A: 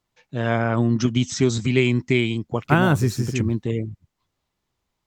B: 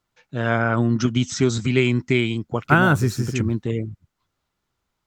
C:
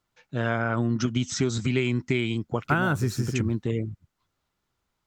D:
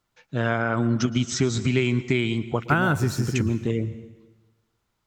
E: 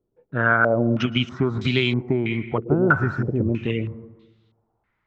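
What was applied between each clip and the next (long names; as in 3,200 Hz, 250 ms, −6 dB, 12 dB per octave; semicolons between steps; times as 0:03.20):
parametric band 1,400 Hz +7.5 dB 0.31 octaves
downward compressor 3 to 1, threshold −20 dBFS, peak gain reduction 7.5 dB; level −1.5 dB
dense smooth reverb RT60 1.2 s, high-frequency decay 0.95×, pre-delay 105 ms, DRR 15 dB; level +2.5 dB
low-pass on a step sequencer 3.1 Hz 420–3,700 Hz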